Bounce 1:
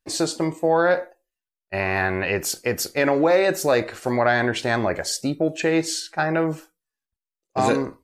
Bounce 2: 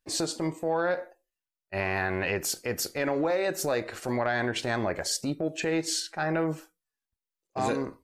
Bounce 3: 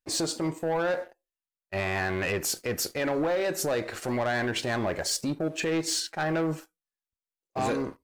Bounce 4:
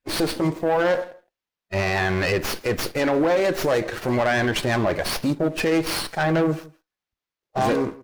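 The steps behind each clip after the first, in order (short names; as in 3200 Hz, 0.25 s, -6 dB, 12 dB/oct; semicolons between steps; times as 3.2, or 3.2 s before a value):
compressor 6:1, threshold -23 dBFS, peak gain reduction 10 dB; transient shaper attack -7 dB, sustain -3 dB
sample leveller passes 2; gain -5 dB
bin magnitudes rounded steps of 15 dB; outdoor echo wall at 28 m, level -21 dB; running maximum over 5 samples; gain +7.5 dB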